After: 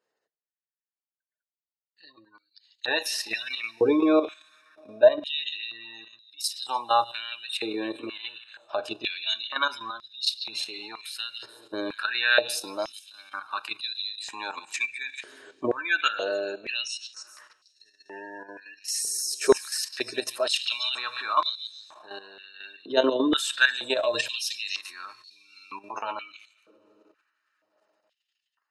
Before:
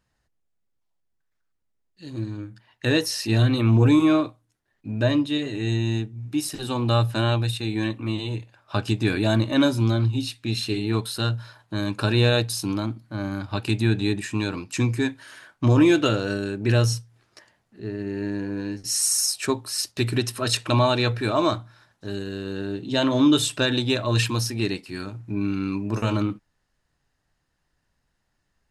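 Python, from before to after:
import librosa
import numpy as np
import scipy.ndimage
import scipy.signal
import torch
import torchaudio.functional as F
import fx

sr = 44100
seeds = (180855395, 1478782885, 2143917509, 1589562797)

y = fx.echo_stepped(x, sr, ms=144, hz=3400.0, octaves=0.7, feedback_pct=70, wet_db=-7.5)
y = fx.spec_gate(y, sr, threshold_db=-30, keep='strong')
y = fx.rev_double_slope(y, sr, seeds[0], early_s=0.43, late_s=4.2, knee_db=-17, drr_db=15.5)
y = fx.level_steps(y, sr, step_db=10)
y = fx.filter_held_highpass(y, sr, hz=2.1, low_hz=440.0, high_hz=4200.0)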